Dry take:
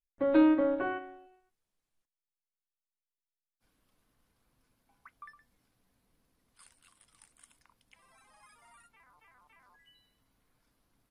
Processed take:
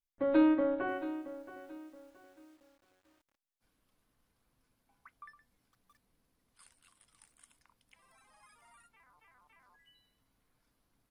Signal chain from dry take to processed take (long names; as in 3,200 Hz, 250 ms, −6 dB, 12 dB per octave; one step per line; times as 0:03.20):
feedback echo at a low word length 674 ms, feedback 35%, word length 9 bits, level −14 dB
level −2.5 dB